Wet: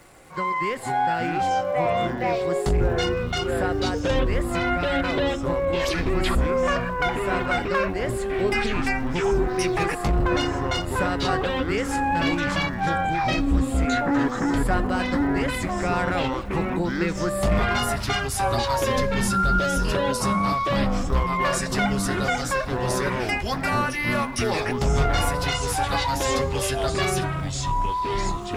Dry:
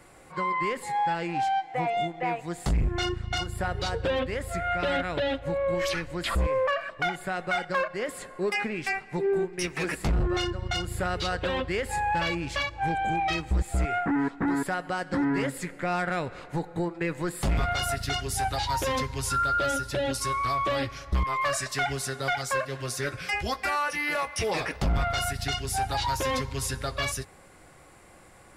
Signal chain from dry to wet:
delay with pitch and tempo change per echo 332 ms, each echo −6 semitones, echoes 3
surface crackle 450 per second −48 dBFS
level +2.5 dB

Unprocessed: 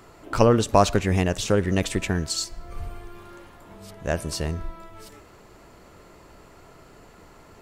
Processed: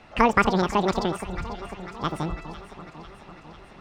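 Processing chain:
high-frequency loss of the air 410 metres
wrong playback speed 7.5 ips tape played at 15 ips
delay that swaps between a low-pass and a high-pass 249 ms, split 1,300 Hz, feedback 80%, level −12 dB

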